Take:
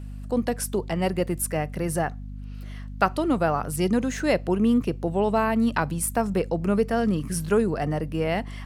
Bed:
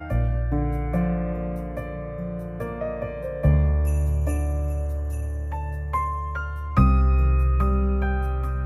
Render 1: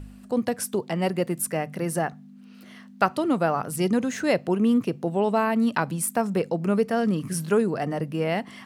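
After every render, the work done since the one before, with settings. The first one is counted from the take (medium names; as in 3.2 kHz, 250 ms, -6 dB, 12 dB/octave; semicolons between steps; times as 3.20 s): de-hum 50 Hz, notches 3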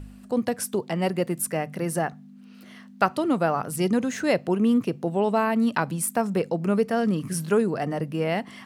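no audible change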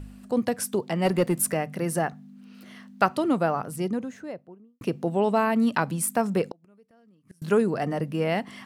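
1.05–1.54 s: waveshaping leveller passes 1; 3.13–4.81 s: studio fade out; 6.48–7.42 s: inverted gate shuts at -22 dBFS, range -35 dB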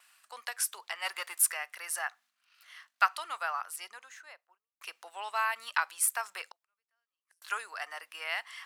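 gate -46 dBFS, range -13 dB; high-pass 1.1 kHz 24 dB/octave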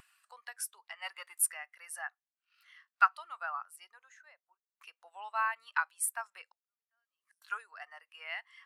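upward compressor, threshold -39 dBFS; spectral contrast expander 1.5:1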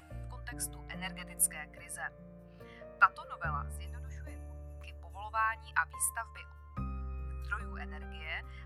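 add bed -22 dB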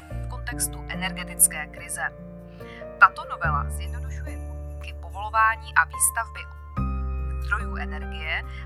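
trim +12 dB; peak limiter -1 dBFS, peak gain reduction 2 dB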